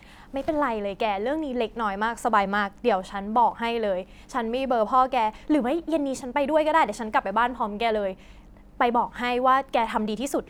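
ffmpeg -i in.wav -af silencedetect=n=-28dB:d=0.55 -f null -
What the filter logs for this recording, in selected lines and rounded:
silence_start: 8.12
silence_end: 8.80 | silence_duration: 0.69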